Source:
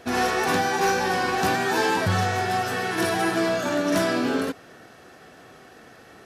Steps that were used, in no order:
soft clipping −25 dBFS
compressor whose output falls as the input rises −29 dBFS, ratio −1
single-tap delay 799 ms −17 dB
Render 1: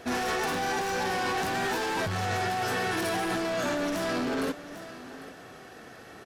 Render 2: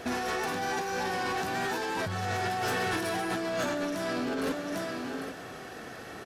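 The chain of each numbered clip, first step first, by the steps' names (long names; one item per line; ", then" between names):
soft clipping, then single-tap delay, then compressor whose output falls as the input rises
single-tap delay, then compressor whose output falls as the input rises, then soft clipping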